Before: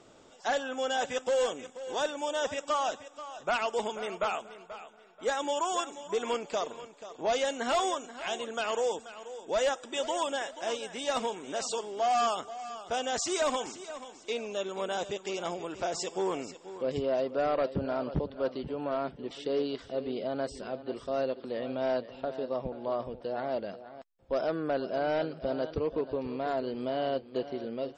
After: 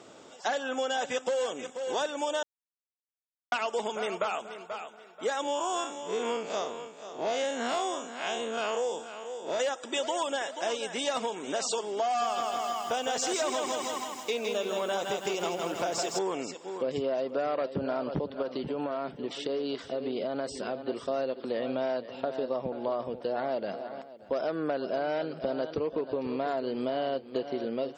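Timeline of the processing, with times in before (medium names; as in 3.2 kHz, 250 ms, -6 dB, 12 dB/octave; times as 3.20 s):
2.43–3.52 s: mute
5.43–9.60 s: spectral blur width 96 ms
12.06–16.19 s: bit-crushed delay 161 ms, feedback 55%, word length 9-bit, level -4 dB
18.42–20.79 s: compression, threshold -32 dBFS
23.32–23.79 s: echo throw 290 ms, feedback 45%, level -15.5 dB
whole clip: Bessel high-pass 160 Hz, order 2; compression, threshold -33 dBFS; trim +6 dB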